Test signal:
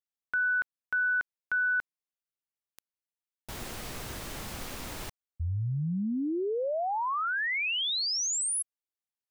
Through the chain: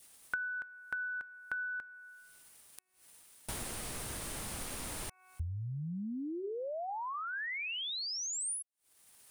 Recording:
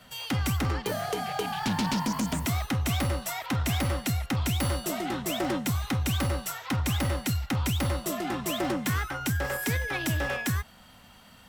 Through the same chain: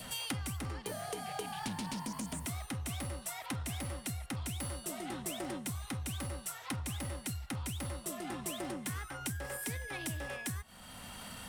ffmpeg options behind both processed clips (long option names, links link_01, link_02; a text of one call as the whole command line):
ffmpeg -i in.wav -af "bandreject=frequency=371:width_type=h:width=4,bandreject=frequency=742:width_type=h:width=4,bandreject=frequency=1113:width_type=h:width=4,bandreject=frequency=1484:width_type=h:width=4,bandreject=frequency=1855:width_type=h:width=4,bandreject=frequency=2226:width_type=h:width=4,bandreject=frequency=2597:width_type=h:width=4,adynamicequalizer=threshold=0.00631:dfrequency=1400:dqfactor=3.1:tfrequency=1400:tqfactor=3.1:attack=5:release=100:ratio=0.375:range=1.5:mode=cutabove:tftype=bell,acompressor=mode=upward:threshold=-36dB:ratio=2.5:attack=0.12:release=146:knee=2.83:detection=peak,equalizer=frequency=9400:width=2.6:gain=12,acompressor=threshold=-38dB:ratio=12:attack=46:release=911:knee=6:detection=peak,volume=1dB" out.wav